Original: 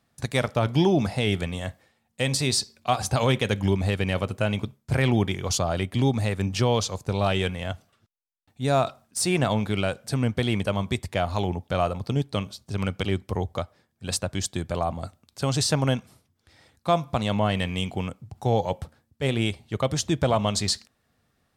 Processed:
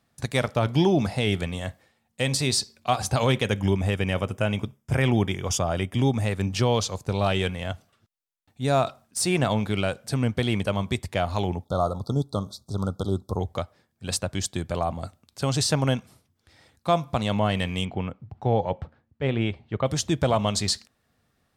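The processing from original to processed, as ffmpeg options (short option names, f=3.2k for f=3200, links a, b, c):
-filter_complex "[0:a]asettb=1/sr,asplit=3[a][b][c];[a]atrim=end=3.454[d];[b]atrim=start=3.45:end=6.27,asetpts=PTS-STARTPTS,afade=t=in:d=0.004:c=qsin,afade=t=out:st=2.816:d=0.004:c=qsin,asuperstop=centerf=4200:order=4:qfactor=4.1[e];[c]atrim=start=6.266[f];[d][e]acrossfade=d=0.004:c1=hsin:c2=qsin[g];[g][f]acrossfade=d=0.004:c1=qsin:c2=hsin,asplit=3[h][i][j];[h]afade=t=out:st=11.64:d=0.02[k];[i]asuperstop=centerf=2200:order=20:qfactor=1.1,afade=t=in:st=11.64:d=0.02,afade=t=out:st=13.39:d=0.02[l];[j]afade=t=in:st=13.39:d=0.02[m];[k][l][m]amix=inputs=3:normalize=0,asettb=1/sr,asplit=3[n][o][p];[n]atrim=end=17.854[q];[o]atrim=start=17.85:end=19.86,asetpts=PTS-STARTPTS,afade=t=in:d=0.004:c=qsin,afade=t=out:st=2.006:d=0.004:c=qsin,lowpass=2.5k[r];[p]atrim=start=19.856[s];[q][r]acrossfade=d=0.004:c1=hsin:c2=qsin[t];[t][s]acrossfade=d=0.004:c1=qsin:c2=hsin"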